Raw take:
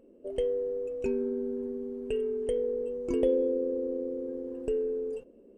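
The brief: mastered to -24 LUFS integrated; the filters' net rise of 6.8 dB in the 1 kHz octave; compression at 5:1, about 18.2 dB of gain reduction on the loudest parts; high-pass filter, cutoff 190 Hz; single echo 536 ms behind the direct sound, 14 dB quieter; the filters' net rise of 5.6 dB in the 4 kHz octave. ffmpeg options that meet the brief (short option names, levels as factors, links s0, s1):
-af "highpass=190,equalizer=f=1000:t=o:g=8,equalizer=f=4000:t=o:g=8,acompressor=threshold=0.00891:ratio=5,aecho=1:1:536:0.2,volume=8.41"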